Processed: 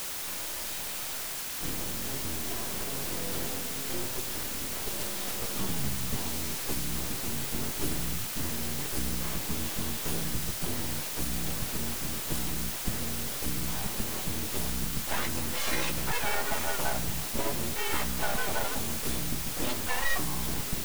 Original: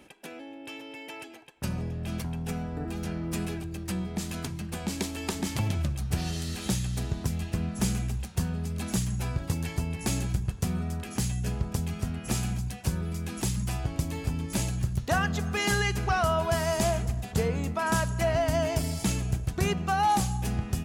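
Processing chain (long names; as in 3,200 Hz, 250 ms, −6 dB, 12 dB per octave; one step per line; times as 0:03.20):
partials spread apart or drawn together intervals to 111%
full-wave rectification
bit-depth reduction 6 bits, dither triangular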